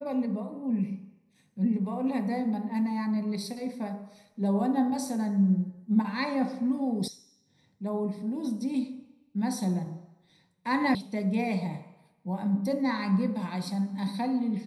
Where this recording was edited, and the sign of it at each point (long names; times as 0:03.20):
0:07.08: cut off before it has died away
0:10.95: cut off before it has died away